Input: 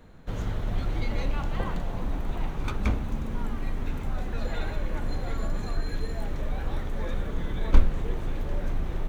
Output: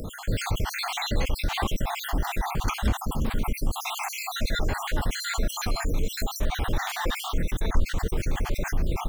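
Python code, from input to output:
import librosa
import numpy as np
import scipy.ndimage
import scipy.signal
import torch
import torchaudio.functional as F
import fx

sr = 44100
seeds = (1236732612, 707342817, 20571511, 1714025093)

p1 = fx.spec_dropout(x, sr, seeds[0], share_pct=57)
p2 = fx.rider(p1, sr, range_db=5, speed_s=0.5)
p3 = p1 + (p2 * 10.0 ** (-2.5 / 20.0))
p4 = fx.high_shelf(p3, sr, hz=3900.0, db=11.5)
p5 = fx.env_flatten(p4, sr, amount_pct=50)
y = p5 * 10.0 ** (-8.5 / 20.0)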